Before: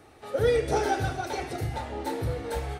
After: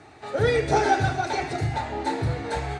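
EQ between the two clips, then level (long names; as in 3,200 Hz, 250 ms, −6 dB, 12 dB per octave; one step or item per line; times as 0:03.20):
loudspeaker in its box 100–7,400 Hz, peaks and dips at 230 Hz −6 dB, 350 Hz −3 dB, 510 Hz −10 dB, 1,200 Hz −4 dB, 3,100 Hz −6 dB, 5,500 Hz −6 dB
+8.0 dB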